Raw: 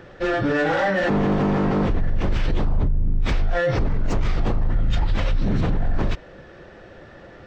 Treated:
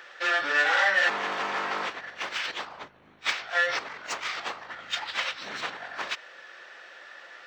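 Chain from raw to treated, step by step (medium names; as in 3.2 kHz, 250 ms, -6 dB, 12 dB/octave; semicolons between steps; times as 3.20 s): high-pass 1.4 kHz 12 dB/octave; trim +5.5 dB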